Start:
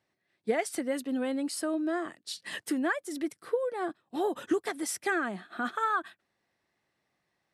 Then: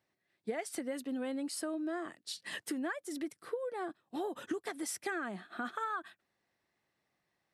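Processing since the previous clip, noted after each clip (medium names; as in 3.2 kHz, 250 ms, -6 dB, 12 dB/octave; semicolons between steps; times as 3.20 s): compression 3:1, threshold -32 dBFS, peak gain reduction 7.5 dB; trim -3 dB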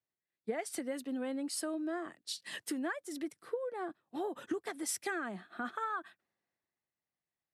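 three bands expanded up and down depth 40%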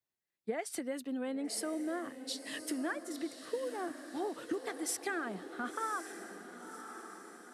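echo that smears into a reverb 1068 ms, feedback 53%, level -10 dB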